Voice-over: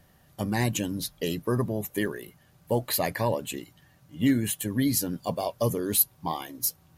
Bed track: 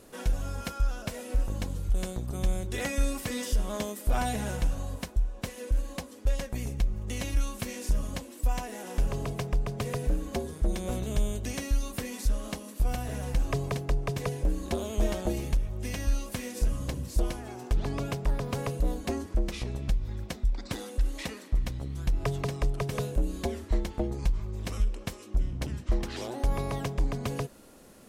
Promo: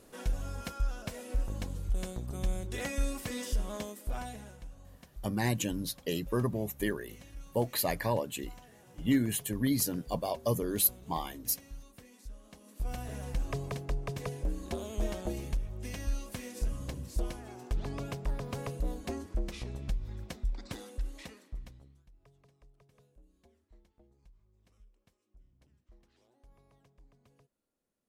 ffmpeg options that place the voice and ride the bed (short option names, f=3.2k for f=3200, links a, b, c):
-filter_complex "[0:a]adelay=4850,volume=-4dB[a];[1:a]volume=9dB,afade=t=out:st=3.59:d=0.97:silence=0.177828,afade=t=in:st=12.51:d=0.49:silence=0.211349,afade=t=out:st=20.6:d=1.44:silence=0.0398107[b];[a][b]amix=inputs=2:normalize=0"